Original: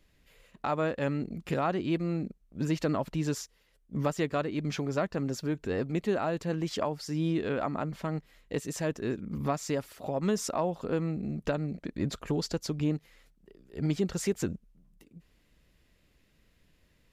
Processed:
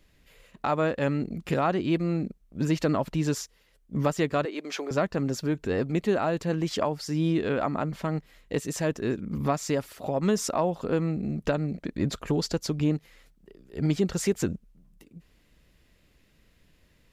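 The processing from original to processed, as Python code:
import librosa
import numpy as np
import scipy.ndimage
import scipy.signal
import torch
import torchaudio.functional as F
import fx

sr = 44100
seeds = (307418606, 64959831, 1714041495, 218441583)

y = fx.highpass(x, sr, hz=350.0, slope=24, at=(4.45, 4.91))
y = F.gain(torch.from_numpy(y), 4.0).numpy()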